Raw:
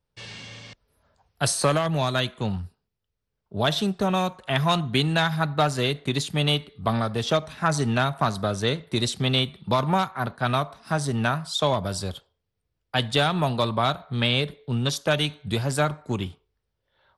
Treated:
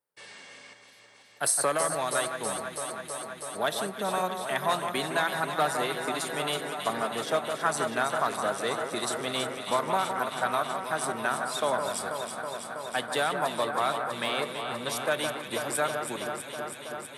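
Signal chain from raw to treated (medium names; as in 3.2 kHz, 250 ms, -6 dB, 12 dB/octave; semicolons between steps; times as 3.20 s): treble shelf 3.1 kHz +9 dB; echo whose repeats swap between lows and highs 162 ms, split 2 kHz, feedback 90%, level -6.5 dB; in parallel at -4.5 dB: one-sided clip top -11 dBFS; on the sum: high-pass 360 Hz 12 dB/octave; high-order bell 4.2 kHz -10 dB; trim -8.5 dB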